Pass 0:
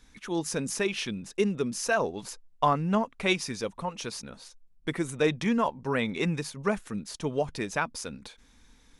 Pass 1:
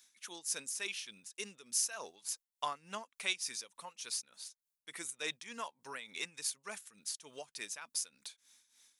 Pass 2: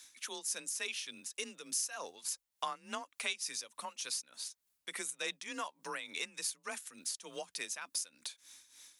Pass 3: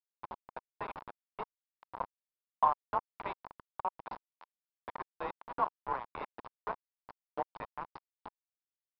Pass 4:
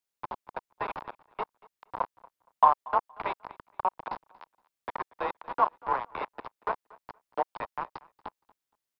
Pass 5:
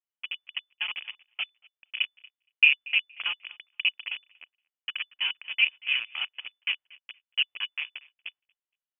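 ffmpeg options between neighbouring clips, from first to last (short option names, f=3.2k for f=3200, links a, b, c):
-af "aderivative,tremolo=f=3.4:d=0.74,volume=4.5dB"
-af "acompressor=threshold=-51dB:ratio=2,afreqshift=31,volume=9dB"
-af "highpass=f=260:w=0.5412,highpass=f=260:w=1.3066,aresample=11025,acrusher=bits=5:mix=0:aa=0.000001,aresample=44100,lowpass=f=960:t=q:w=4.3,volume=2dB"
-filter_complex "[0:a]acrossover=split=330|960[a][b][c];[a]alimiter=level_in=24dB:limit=-24dB:level=0:latency=1:release=313,volume=-24dB[d];[d][b][c]amix=inputs=3:normalize=0,aecho=1:1:234|468:0.0708|0.0163,volume=7.5dB"
-af "agate=range=-10dB:threshold=-53dB:ratio=16:detection=peak,equalizer=f=550:w=5.7:g=13,lowpass=f=3k:t=q:w=0.5098,lowpass=f=3k:t=q:w=0.6013,lowpass=f=3k:t=q:w=0.9,lowpass=f=3k:t=q:w=2.563,afreqshift=-3500"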